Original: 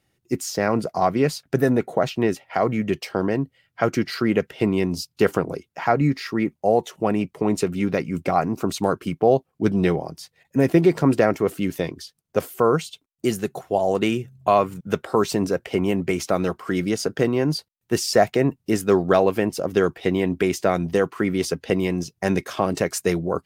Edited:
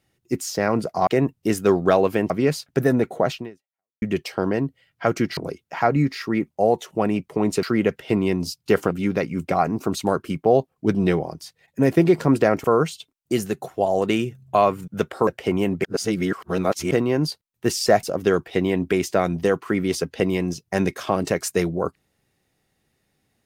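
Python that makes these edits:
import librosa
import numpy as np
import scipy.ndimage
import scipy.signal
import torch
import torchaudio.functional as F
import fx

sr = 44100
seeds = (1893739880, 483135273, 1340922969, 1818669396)

y = fx.edit(x, sr, fx.fade_out_span(start_s=2.14, length_s=0.65, curve='exp'),
    fx.move(start_s=4.14, length_s=1.28, to_s=7.68),
    fx.cut(start_s=11.41, length_s=1.16),
    fx.cut(start_s=15.2, length_s=0.34),
    fx.reverse_span(start_s=16.11, length_s=1.07),
    fx.move(start_s=18.3, length_s=1.23, to_s=1.07), tone=tone)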